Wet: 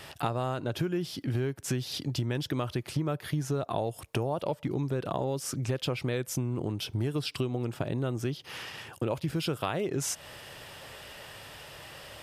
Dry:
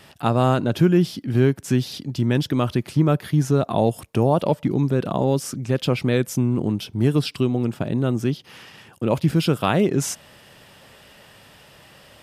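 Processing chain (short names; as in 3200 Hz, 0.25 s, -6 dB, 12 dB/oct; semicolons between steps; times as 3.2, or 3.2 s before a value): bell 210 Hz -9 dB 0.79 oct; compressor 6:1, threshold -31 dBFS, peak gain reduction 15.5 dB; gain +3 dB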